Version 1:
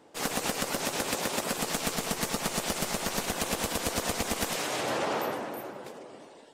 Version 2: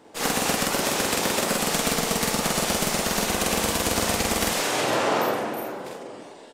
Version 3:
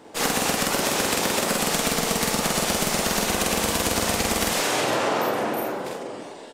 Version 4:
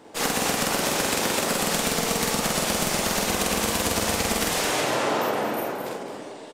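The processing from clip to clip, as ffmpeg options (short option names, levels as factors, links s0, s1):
-af "aecho=1:1:46.65|78.72:0.891|0.282,volume=1.68"
-af "acompressor=threshold=0.0631:ratio=6,volume=1.68"
-af "aecho=1:1:215:0.355,volume=0.841"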